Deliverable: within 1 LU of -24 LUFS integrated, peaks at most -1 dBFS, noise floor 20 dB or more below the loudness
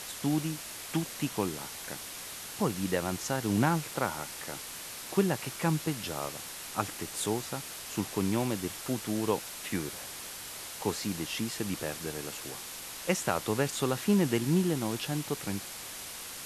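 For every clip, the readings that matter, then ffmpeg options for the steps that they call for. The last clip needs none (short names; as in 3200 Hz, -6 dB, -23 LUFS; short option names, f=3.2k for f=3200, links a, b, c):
noise floor -43 dBFS; noise floor target -53 dBFS; loudness -32.5 LUFS; peak -11.0 dBFS; loudness target -24.0 LUFS
-> -af "afftdn=nr=10:nf=-43"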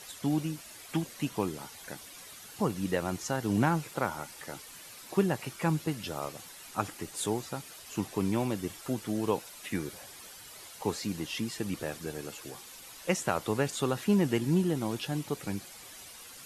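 noise floor -49 dBFS; noise floor target -53 dBFS
-> -af "afftdn=nr=6:nf=-49"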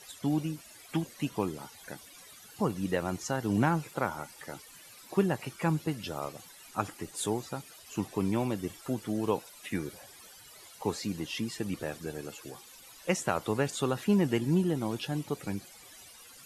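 noise floor -53 dBFS; loudness -32.5 LUFS; peak -11.5 dBFS; loudness target -24.0 LUFS
-> -af "volume=8.5dB"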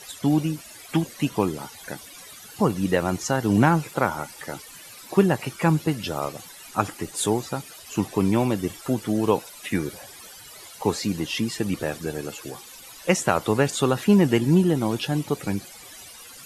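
loudness -24.0 LUFS; peak -3.0 dBFS; noise floor -44 dBFS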